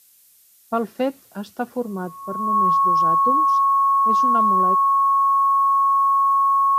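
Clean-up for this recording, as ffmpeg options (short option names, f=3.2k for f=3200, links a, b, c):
-af "bandreject=f=1.1k:w=30,agate=range=-21dB:threshold=-46dB"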